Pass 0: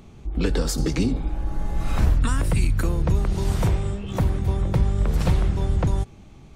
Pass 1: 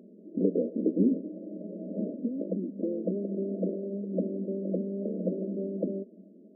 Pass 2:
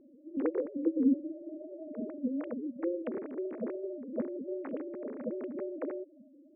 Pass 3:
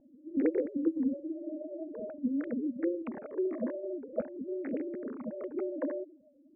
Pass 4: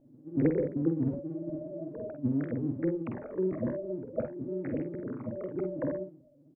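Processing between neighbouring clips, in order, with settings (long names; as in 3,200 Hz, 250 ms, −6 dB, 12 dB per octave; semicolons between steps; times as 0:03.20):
brick-wall band-pass 180–660 Hz
three sine waves on the formant tracks; level −4 dB
all-pass phaser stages 12, 0.47 Hz, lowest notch 130–1,100 Hz; low-pass that shuts in the quiet parts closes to 950 Hz, open at −30.5 dBFS; level +5 dB
sub-octave generator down 1 octave, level −3 dB; on a send: ambience of single reflections 48 ms −6.5 dB, 60 ms −14 dB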